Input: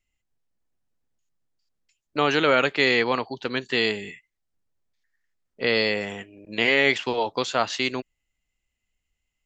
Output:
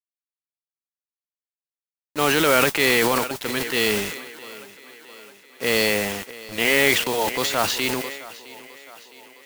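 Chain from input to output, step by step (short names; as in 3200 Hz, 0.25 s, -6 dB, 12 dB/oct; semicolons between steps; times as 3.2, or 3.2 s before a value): bit-crush 6-bit; modulation noise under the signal 10 dB; on a send: thinning echo 0.662 s, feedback 58%, high-pass 180 Hz, level -19 dB; on the sum: transient shaper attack -3 dB, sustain +8 dB; gain +1.5 dB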